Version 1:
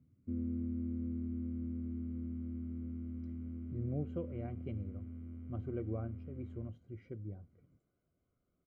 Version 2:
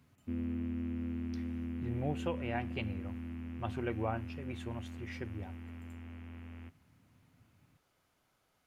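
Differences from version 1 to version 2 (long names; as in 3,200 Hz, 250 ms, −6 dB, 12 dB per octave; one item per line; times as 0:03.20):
speech: entry −1.90 s
master: remove moving average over 50 samples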